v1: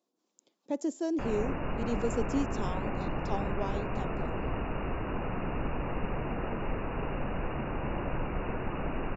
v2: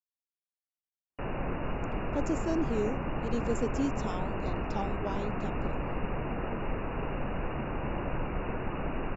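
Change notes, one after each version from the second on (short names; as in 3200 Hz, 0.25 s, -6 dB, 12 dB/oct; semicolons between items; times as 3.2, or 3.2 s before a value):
speech: entry +1.45 s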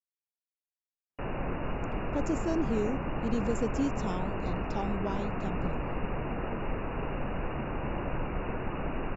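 speech: remove HPF 230 Hz 24 dB/oct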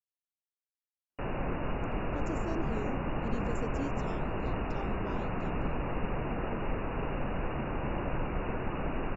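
speech -8.0 dB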